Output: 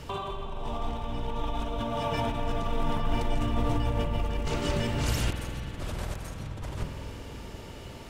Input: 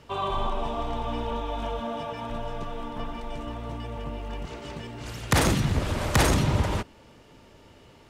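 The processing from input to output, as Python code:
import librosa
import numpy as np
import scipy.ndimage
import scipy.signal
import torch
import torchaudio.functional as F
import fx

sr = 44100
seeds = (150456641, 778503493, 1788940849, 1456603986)

y = fx.octave_divider(x, sr, octaves=1, level_db=-4.0)
y = fx.high_shelf(y, sr, hz=5600.0, db=7.5)
y = fx.over_compress(y, sr, threshold_db=-35.0, ratio=-1.0)
y = fx.low_shelf(y, sr, hz=120.0, db=5.5)
y = fx.rev_spring(y, sr, rt60_s=3.4, pass_ms=(48,), chirp_ms=40, drr_db=4.5)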